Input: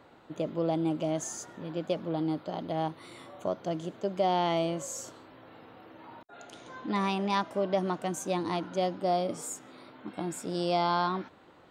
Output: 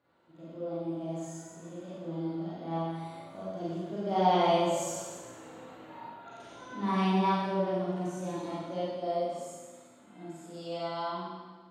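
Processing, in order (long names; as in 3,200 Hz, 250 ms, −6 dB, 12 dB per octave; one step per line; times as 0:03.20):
source passing by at 0:05.35, 11 m/s, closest 13 metres
harmonic and percussive parts rebalanced percussive −13 dB
four-comb reverb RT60 1.4 s, combs from 33 ms, DRR −9.5 dB
level −3.5 dB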